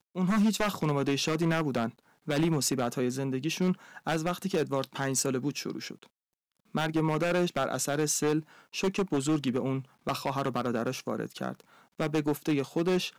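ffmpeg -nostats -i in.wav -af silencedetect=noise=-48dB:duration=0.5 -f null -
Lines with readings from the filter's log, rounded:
silence_start: 6.06
silence_end: 6.74 | silence_duration: 0.68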